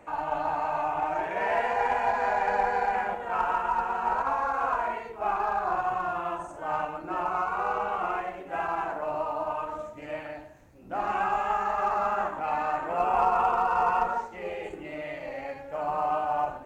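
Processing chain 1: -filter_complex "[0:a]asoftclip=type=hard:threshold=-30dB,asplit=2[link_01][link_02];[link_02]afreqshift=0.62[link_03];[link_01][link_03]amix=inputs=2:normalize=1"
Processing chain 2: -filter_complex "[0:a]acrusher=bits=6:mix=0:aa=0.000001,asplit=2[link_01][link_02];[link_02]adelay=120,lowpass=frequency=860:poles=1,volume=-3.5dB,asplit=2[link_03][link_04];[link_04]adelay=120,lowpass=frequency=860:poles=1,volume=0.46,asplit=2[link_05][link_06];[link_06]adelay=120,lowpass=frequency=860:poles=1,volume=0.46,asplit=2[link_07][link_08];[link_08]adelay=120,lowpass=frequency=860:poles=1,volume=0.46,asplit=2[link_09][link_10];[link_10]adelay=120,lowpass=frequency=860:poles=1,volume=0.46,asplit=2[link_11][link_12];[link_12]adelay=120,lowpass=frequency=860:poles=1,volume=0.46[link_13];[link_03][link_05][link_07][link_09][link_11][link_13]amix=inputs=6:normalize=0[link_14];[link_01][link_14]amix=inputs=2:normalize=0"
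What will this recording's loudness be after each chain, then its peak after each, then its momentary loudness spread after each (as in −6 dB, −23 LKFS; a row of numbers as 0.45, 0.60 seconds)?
−36.0, −27.5 LKFS; −26.0, −11.5 dBFS; 7, 11 LU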